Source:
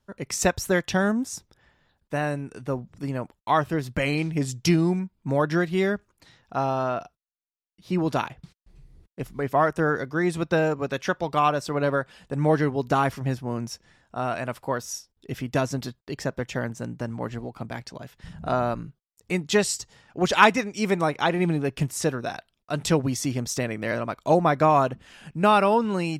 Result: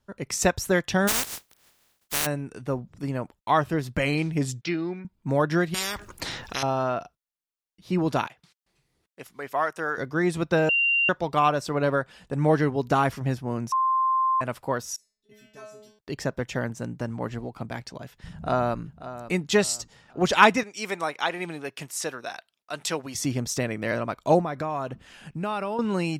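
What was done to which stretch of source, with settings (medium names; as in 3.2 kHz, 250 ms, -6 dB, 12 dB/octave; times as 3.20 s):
1.07–2.25 s: spectral contrast reduction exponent 0.12
4.61–5.05 s: cabinet simulation 370–3900 Hz, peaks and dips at 450 Hz -8 dB, 690 Hz -7 dB, 980 Hz -10 dB, 3 kHz -5 dB
5.74–6.63 s: spectrum-flattening compressor 10:1
8.27–9.98 s: high-pass 1.1 kHz 6 dB/octave
10.69–11.09 s: bleep 2.77 kHz -19 dBFS
13.72–14.41 s: bleep 1.05 kHz -19.5 dBFS
14.96–15.99 s: inharmonic resonator 210 Hz, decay 0.72 s, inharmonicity 0.002
18.31–18.79 s: echo throw 540 ms, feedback 35%, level -13.5 dB
20.63–23.15 s: high-pass 980 Hz 6 dB/octave
24.41–25.79 s: compression 3:1, threshold -29 dBFS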